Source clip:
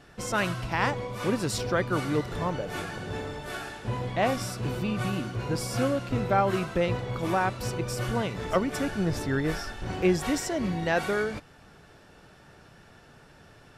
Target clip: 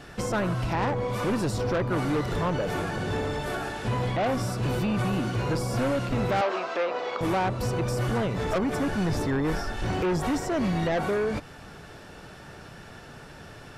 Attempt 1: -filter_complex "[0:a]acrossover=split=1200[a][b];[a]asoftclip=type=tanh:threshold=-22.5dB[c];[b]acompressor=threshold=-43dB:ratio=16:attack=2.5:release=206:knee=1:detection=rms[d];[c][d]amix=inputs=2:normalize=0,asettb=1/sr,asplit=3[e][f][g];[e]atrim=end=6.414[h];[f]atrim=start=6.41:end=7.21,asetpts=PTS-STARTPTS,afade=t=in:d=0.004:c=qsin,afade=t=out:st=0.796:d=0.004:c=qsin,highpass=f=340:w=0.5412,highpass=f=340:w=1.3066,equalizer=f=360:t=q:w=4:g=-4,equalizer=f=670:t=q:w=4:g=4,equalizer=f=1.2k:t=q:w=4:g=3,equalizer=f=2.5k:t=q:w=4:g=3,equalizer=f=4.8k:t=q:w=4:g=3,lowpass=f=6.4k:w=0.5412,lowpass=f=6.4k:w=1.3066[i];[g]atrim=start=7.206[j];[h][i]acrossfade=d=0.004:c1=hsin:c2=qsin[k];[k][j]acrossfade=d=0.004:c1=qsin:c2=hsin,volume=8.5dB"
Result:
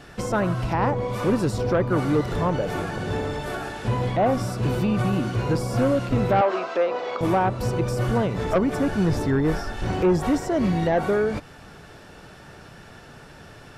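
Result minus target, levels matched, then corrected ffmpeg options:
soft clip: distortion -7 dB
-filter_complex "[0:a]acrossover=split=1200[a][b];[a]asoftclip=type=tanh:threshold=-31.5dB[c];[b]acompressor=threshold=-43dB:ratio=16:attack=2.5:release=206:knee=1:detection=rms[d];[c][d]amix=inputs=2:normalize=0,asettb=1/sr,asplit=3[e][f][g];[e]atrim=end=6.414[h];[f]atrim=start=6.41:end=7.21,asetpts=PTS-STARTPTS,afade=t=in:d=0.004:c=qsin,afade=t=out:st=0.796:d=0.004:c=qsin,highpass=f=340:w=0.5412,highpass=f=340:w=1.3066,equalizer=f=360:t=q:w=4:g=-4,equalizer=f=670:t=q:w=4:g=4,equalizer=f=1.2k:t=q:w=4:g=3,equalizer=f=2.5k:t=q:w=4:g=3,equalizer=f=4.8k:t=q:w=4:g=3,lowpass=f=6.4k:w=0.5412,lowpass=f=6.4k:w=1.3066[i];[g]atrim=start=7.206[j];[h][i]acrossfade=d=0.004:c1=hsin:c2=qsin[k];[k][j]acrossfade=d=0.004:c1=qsin:c2=hsin,volume=8.5dB"

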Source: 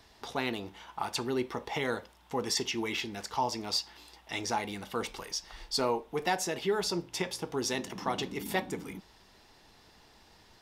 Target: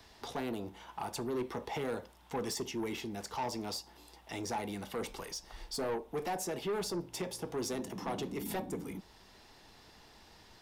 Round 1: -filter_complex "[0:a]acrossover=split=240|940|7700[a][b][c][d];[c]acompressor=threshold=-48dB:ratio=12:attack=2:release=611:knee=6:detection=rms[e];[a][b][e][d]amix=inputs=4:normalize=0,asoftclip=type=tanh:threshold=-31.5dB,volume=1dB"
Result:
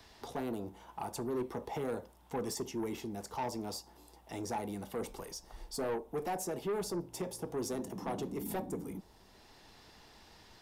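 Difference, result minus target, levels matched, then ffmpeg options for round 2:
compressor: peak gain reduction +9 dB
-filter_complex "[0:a]acrossover=split=240|940|7700[a][b][c][d];[c]acompressor=threshold=-38dB:ratio=12:attack=2:release=611:knee=6:detection=rms[e];[a][b][e][d]amix=inputs=4:normalize=0,asoftclip=type=tanh:threshold=-31.5dB,volume=1dB"

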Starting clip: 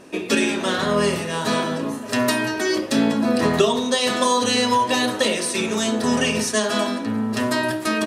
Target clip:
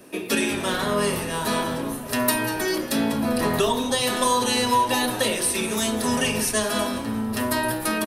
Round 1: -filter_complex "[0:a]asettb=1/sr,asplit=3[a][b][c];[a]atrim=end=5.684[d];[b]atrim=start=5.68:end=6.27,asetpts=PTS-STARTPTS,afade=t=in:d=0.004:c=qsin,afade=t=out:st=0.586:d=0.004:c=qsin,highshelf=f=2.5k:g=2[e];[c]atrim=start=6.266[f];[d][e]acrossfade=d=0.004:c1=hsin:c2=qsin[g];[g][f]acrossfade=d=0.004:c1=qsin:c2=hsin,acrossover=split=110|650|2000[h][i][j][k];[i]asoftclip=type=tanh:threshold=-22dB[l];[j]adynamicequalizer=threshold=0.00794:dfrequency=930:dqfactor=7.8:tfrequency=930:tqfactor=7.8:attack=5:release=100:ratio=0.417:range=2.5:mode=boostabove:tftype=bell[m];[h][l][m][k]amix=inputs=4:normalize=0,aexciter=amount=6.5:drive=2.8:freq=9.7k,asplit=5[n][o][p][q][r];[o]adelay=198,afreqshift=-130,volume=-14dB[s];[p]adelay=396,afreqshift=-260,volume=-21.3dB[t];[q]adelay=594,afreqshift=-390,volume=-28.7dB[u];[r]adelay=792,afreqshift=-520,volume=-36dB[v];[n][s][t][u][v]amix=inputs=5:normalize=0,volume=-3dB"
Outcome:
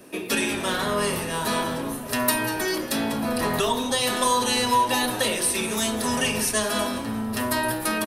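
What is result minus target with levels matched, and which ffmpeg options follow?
soft clip: distortion +9 dB
-filter_complex "[0:a]asettb=1/sr,asplit=3[a][b][c];[a]atrim=end=5.684[d];[b]atrim=start=5.68:end=6.27,asetpts=PTS-STARTPTS,afade=t=in:d=0.004:c=qsin,afade=t=out:st=0.586:d=0.004:c=qsin,highshelf=f=2.5k:g=2[e];[c]atrim=start=6.266[f];[d][e]acrossfade=d=0.004:c1=hsin:c2=qsin[g];[g][f]acrossfade=d=0.004:c1=qsin:c2=hsin,acrossover=split=110|650|2000[h][i][j][k];[i]asoftclip=type=tanh:threshold=-14dB[l];[j]adynamicequalizer=threshold=0.00794:dfrequency=930:dqfactor=7.8:tfrequency=930:tqfactor=7.8:attack=5:release=100:ratio=0.417:range=2.5:mode=boostabove:tftype=bell[m];[h][l][m][k]amix=inputs=4:normalize=0,aexciter=amount=6.5:drive=2.8:freq=9.7k,asplit=5[n][o][p][q][r];[o]adelay=198,afreqshift=-130,volume=-14dB[s];[p]adelay=396,afreqshift=-260,volume=-21.3dB[t];[q]adelay=594,afreqshift=-390,volume=-28.7dB[u];[r]adelay=792,afreqshift=-520,volume=-36dB[v];[n][s][t][u][v]amix=inputs=5:normalize=0,volume=-3dB"

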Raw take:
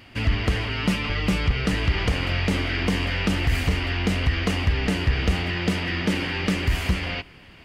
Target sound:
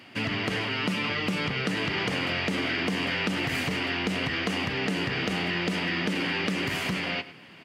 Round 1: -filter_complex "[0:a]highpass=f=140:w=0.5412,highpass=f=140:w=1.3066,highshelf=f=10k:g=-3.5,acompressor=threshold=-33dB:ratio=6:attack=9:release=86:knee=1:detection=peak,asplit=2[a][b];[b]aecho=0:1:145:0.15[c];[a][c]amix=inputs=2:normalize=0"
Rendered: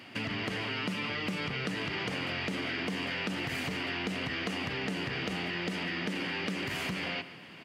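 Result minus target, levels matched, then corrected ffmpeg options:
echo 43 ms late; compressor: peak gain reduction +6 dB
-filter_complex "[0:a]highpass=f=140:w=0.5412,highpass=f=140:w=1.3066,highshelf=f=10k:g=-3.5,acompressor=threshold=-25.5dB:ratio=6:attack=9:release=86:knee=1:detection=peak,asplit=2[a][b];[b]aecho=0:1:102:0.15[c];[a][c]amix=inputs=2:normalize=0"

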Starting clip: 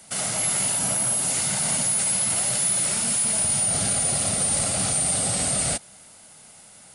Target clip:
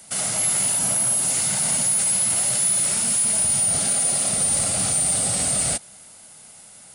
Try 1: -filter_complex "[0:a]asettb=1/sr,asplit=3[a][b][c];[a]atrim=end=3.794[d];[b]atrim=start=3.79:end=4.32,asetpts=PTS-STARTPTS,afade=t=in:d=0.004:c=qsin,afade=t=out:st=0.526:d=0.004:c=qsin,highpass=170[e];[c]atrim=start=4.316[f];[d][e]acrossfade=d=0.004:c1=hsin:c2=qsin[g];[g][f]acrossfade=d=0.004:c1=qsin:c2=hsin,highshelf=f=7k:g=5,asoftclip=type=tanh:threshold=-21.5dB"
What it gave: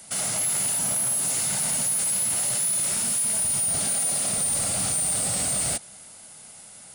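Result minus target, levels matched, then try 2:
soft clip: distortion +14 dB
-filter_complex "[0:a]asettb=1/sr,asplit=3[a][b][c];[a]atrim=end=3.794[d];[b]atrim=start=3.79:end=4.32,asetpts=PTS-STARTPTS,afade=t=in:d=0.004:c=qsin,afade=t=out:st=0.526:d=0.004:c=qsin,highpass=170[e];[c]atrim=start=4.316[f];[d][e]acrossfade=d=0.004:c1=hsin:c2=qsin[g];[g][f]acrossfade=d=0.004:c1=qsin:c2=hsin,highshelf=f=7k:g=5,asoftclip=type=tanh:threshold=-11dB"

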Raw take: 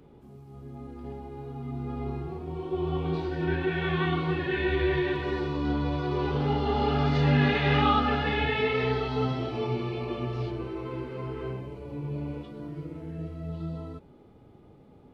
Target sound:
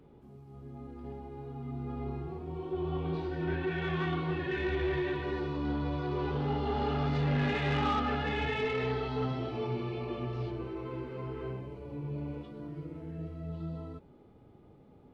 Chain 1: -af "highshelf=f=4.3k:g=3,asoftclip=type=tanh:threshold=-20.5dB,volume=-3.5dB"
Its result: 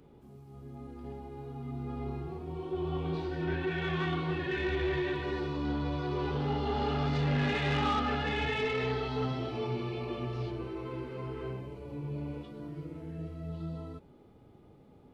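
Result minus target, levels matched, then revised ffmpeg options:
8000 Hz band +4.5 dB
-af "highshelf=f=4.3k:g=-5.5,asoftclip=type=tanh:threshold=-20.5dB,volume=-3.5dB"

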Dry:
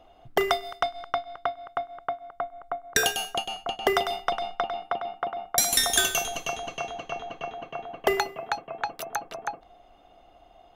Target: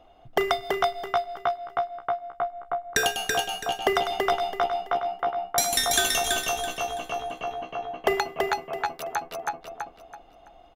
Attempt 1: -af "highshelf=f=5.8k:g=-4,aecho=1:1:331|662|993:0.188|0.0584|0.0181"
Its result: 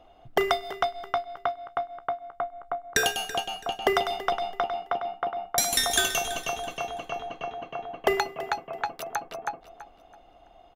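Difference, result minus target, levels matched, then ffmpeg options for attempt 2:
echo-to-direct -11 dB
-af "highshelf=f=5.8k:g=-4,aecho=1:1:331|662|993|1324:0.668|0.207|0.0642|0.0199"

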